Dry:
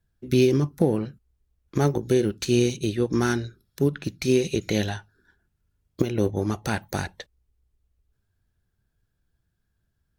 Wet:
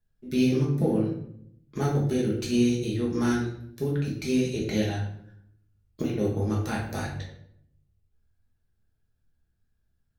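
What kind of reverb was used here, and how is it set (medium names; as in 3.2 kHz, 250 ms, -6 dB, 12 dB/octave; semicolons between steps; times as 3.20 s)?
simulated room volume 140 m³, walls mixed, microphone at 1.4 m; trim -9 dB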